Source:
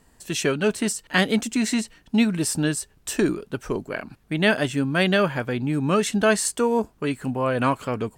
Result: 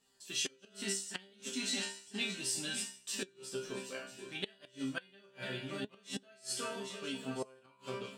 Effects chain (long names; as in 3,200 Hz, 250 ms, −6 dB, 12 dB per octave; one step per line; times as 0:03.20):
feedback delay that plays each chunk backwards 498 ms, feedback 56%, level −11.5 dB
resonators tuned to a chord C3 fifth, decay 0.45 s
flutter between parallel walls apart 5.6 metres, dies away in 0.21 s
gate with flip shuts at −27 dBFS, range −29 dB
parametric band 2,100 Hz −7 dB 0.86 octaves
flanger 0.45 Hz, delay 2.3 ms, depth 3.4 ms, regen +65%
meter weighting curve D
level +5 dB